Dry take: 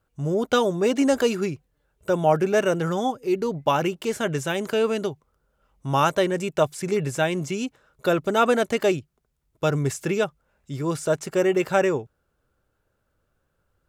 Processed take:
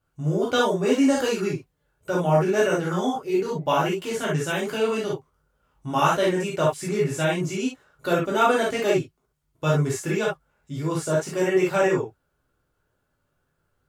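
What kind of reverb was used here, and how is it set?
non-linear reverb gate 90 ms flat, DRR -5.5 dB; gain -6 dB

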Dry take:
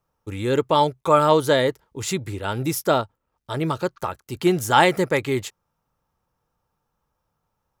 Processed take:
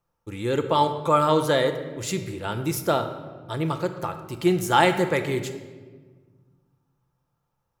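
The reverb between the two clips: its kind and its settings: shoebox room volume 1400 m³, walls mixed, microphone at 0.8 m; gain -3.5 dB

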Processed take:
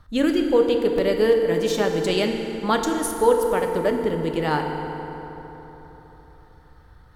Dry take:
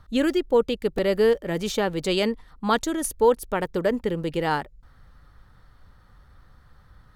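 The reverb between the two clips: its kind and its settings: FDN reverb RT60 3.9 s, high-frequency decay 0.55×, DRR 3 dB

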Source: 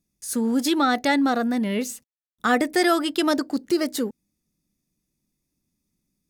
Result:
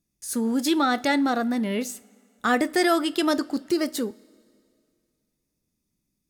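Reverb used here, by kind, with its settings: two-slope reverb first 0.27 s, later 2.4 s, from -20 dB, DRR 13.5 dB; gain -1.5 dB

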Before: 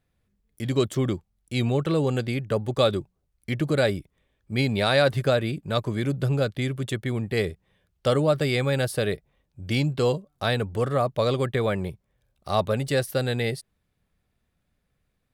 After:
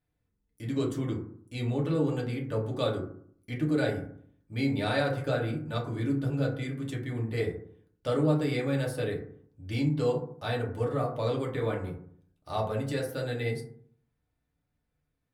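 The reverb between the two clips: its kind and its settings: FDN reverb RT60 0.59 s, low-frequency decay 1.25×, high-frequency decay 0.35×, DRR -3 dB; gain -12 dB

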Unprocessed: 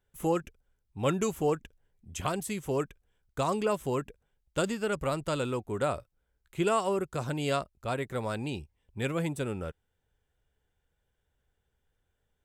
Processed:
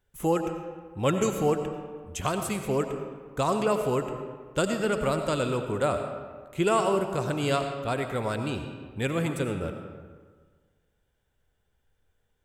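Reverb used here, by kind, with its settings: digital reverb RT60 1.6 s, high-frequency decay 0.6×, pre-delay 50 ms, DRR 6 dB; gain +3 dB

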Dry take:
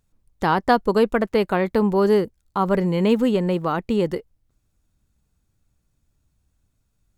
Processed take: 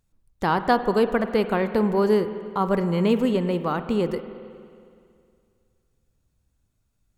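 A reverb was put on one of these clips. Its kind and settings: spring tank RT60 2.3 s, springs 46/52 ms, chirp 60 ms, DRR 10 dB; gain -2.5 dB

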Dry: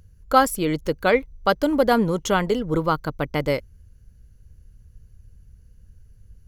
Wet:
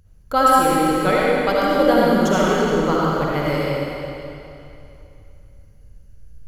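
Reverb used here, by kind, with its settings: digital reverb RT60 2.8 s, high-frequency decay 0.95×, pre-delay 30 ms, DRR -6.5 dB; gain -3.5 dB

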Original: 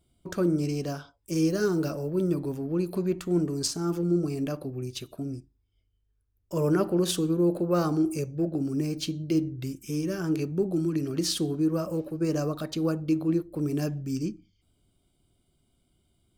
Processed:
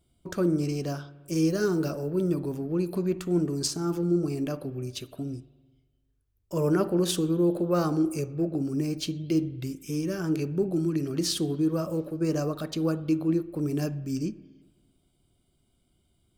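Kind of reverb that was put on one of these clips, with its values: spring tank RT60 1.4 s, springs 49/56 ms, chirp 75 ms, DRR 17.5 dB

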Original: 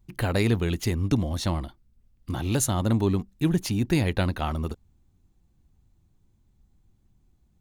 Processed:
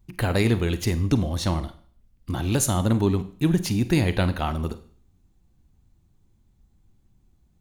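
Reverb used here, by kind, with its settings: Schroeder reverb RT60 0.49 s, combs from 33 ms, DRR 12 dB; gain +2 dB

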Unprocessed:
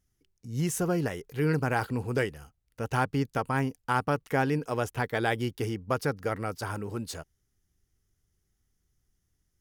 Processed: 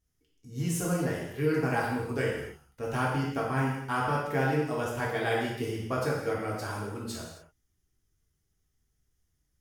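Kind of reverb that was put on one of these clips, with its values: non-linear reverb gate 0.31 s falling, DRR -5 dB; gain -6.5 dB

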